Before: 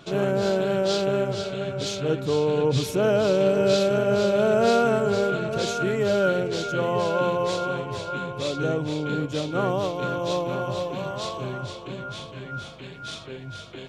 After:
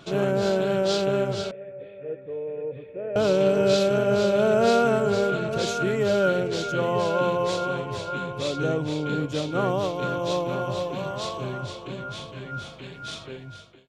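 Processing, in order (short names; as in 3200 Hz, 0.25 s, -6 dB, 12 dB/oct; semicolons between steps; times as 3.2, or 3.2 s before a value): ending faded out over 0.60 s; 1.51–3.16 vocal tract filter e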